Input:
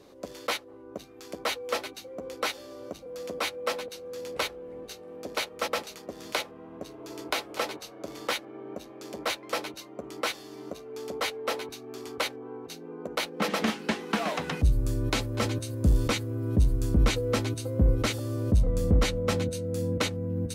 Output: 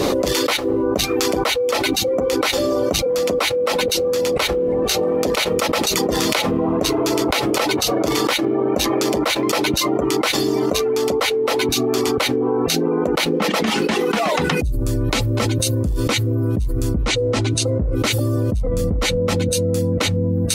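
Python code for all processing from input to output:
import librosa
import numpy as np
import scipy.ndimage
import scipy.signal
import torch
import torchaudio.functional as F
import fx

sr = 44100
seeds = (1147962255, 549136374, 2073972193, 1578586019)

y = fx.chain(x, sr, fx.lowpass(hz=9400.0, slope=24),
    fx.doppler_dist(depth_ms=0.31), at=(17.02, 17.95))
y = fx.notch(y, sr, hz=1600.0, q=14.0)
y = fx.dereverb_blind(y, sr, rt60_s=0.59)
y = fx.env_flatten(y, sr, amount_pct=100)
y = y * 10.0 ** (-1.5 / 20.0)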